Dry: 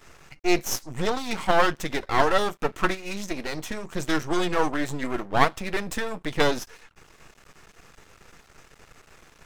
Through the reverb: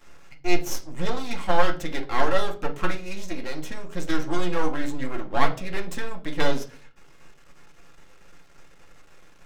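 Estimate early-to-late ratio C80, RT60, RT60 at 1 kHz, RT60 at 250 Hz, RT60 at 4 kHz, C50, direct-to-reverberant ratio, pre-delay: 19.5 dB, 0.45 s, 0.35 s, 0.65 s, 0.30 s, 13.5 dB, 2.0 dB, 4 ms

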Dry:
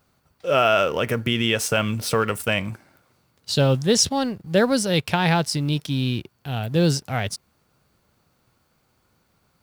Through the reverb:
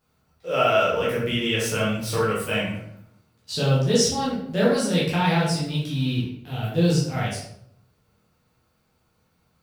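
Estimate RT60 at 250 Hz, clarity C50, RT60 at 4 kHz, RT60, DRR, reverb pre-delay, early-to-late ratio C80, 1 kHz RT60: 0.90 s, 2.0 dB, 0.50 s, 0.70 s, -8.0 dB, 10 ms, 6.0 dB, 0.65 s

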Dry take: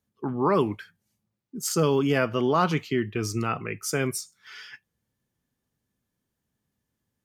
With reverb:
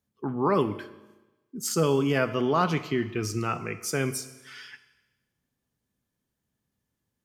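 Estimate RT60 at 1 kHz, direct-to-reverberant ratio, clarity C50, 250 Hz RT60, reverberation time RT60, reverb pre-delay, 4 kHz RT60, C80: 1.1 s, 11.5 dB, 14.0 dB, 1.1 s, 1.1 s, 9 ms, 1.1 s, 15.5 dB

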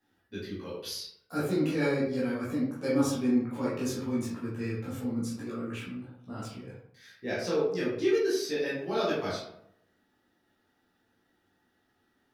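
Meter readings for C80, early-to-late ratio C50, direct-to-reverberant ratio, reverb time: 6.0 dB, 2.0 dB, -9.0 dB, 0.70 s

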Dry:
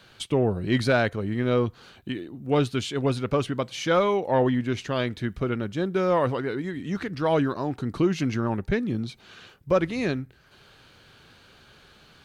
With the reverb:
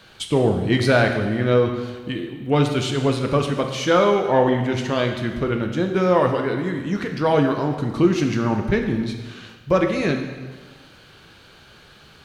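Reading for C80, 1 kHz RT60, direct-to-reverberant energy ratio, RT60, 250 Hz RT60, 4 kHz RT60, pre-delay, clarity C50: 8.0 dB, 1.4 s, 3.5 dB, 1.4 s, 1.5 s, 1.3 s, 4 ms, 6.0 dB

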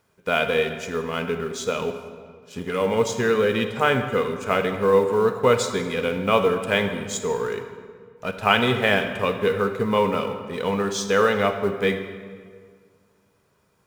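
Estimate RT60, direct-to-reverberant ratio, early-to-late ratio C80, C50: 1.9 s, 7.0 dB, 9.5 dB, 8.0 dB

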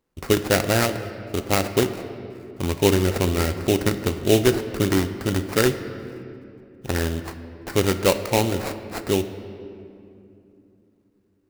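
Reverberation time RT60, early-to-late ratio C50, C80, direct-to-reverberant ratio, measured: 2.8 s, 10.5 dB, 11.5 dB, 9.0 dB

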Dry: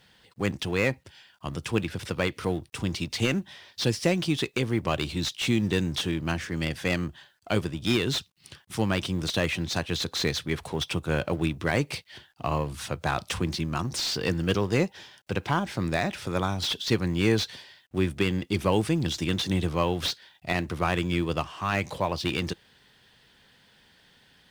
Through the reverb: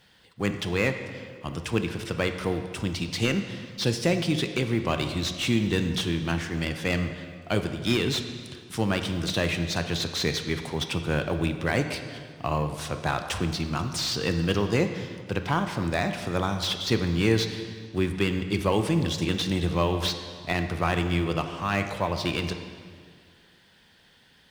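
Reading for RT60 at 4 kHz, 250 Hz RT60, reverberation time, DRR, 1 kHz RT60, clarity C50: 1.6 s, 2.0 s, 1.9 s, 7.0 dB, 1.9 s, 8.0 dB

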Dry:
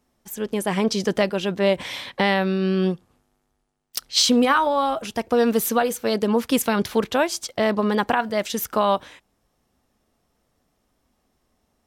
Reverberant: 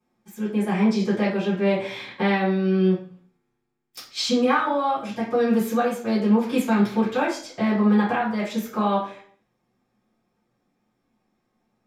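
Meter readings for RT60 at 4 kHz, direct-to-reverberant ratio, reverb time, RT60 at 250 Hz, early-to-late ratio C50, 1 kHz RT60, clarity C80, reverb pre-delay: 0.50 s, -13.5 dB, 0.55 s, 0.65 s, 6.5 dB, 0.50 s, 11.0 dB, 3 ms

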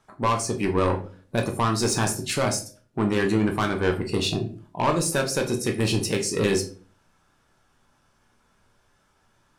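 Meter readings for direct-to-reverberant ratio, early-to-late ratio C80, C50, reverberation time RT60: 2.5 dB, 16.5 dB, 12.0 dB, 0.45 s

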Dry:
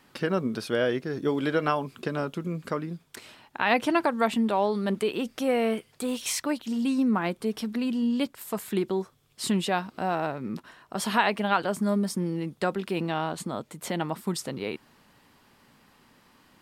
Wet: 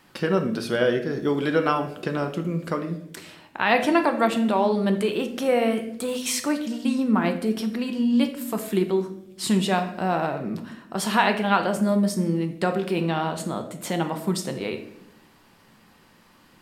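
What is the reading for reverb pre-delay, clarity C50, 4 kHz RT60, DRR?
5 ms, 10.0 dB, 0.50 s, 6.0 dB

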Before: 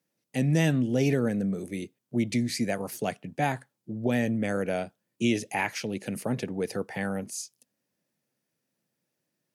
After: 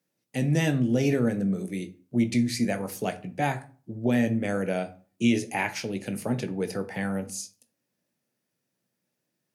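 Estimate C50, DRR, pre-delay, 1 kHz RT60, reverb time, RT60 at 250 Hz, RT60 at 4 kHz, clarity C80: 16.0 dB, 8.5 dB, 16 ms, 0.40 s, 0.40 s, 0.50 s, 0.25 s, 21.5 dB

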